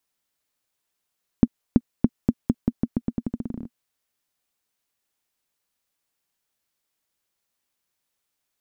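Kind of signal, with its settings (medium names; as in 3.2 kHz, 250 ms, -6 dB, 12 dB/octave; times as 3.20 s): bouncing ball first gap 0.33 s, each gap 0.86, 237 Hz, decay 47 ms -2 dBFS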